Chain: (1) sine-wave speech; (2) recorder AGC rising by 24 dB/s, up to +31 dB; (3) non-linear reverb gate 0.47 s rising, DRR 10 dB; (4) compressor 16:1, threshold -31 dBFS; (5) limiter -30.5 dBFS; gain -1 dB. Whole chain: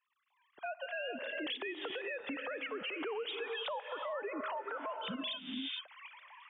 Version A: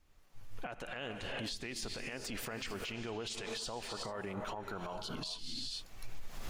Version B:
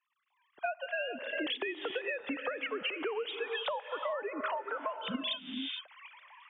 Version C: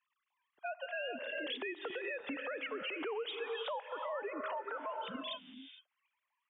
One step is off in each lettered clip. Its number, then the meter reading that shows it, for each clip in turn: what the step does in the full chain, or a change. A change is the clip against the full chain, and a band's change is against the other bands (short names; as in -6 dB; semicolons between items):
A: 1, 4 kHz band +3.0 dB; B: 5, mean gain reduction 2.0 dB; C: 2, momentary loudness spread change +2 LU